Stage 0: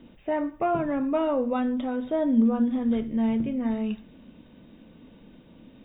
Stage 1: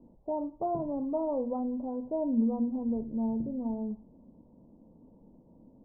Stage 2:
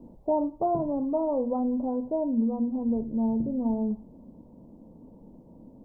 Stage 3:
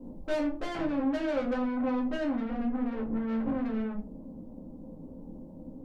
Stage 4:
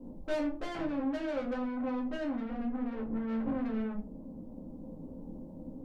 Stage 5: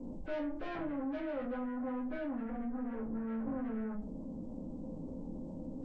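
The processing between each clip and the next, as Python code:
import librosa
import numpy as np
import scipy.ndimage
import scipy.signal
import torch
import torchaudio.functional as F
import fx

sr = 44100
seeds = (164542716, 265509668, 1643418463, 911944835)

y1 = scipy.signal.sosfilt(scipy.signal.cheby1(5, 1.0, 960.0, 'lowpass', fs=sr, output='sos'), x)
y1 = y1 * 10.0 ** (-5.5 / 20.0)
y2 = fx.rider(y1, sr, range_db=10, speed_s=0.5)
y2 = y2 * 10.0 ** (4.5 / 20.0)
y3 = fx.tube_stage(y2, sr, drive_db=36.0, bias=0.55)
y3 = fx.room_shoebox(y3, sr, seeds[0], volume_m3=140.0, walls='furnished', distance_m=2.1)
y4 = fx.rider(y3, sr, range_db=4, speed_s=2.0)
y4 = y4 * 10.0 ** (-4.0 / 20.0)
y5 = fx.freq_compress(y4, sr, knee_hz=1400.0, ratio=1.5)
y5 = fx.env_flatten(y5, sr, amount_pct=50)
y5 = y5 * 10.0 ** (-6.0 / 20.0)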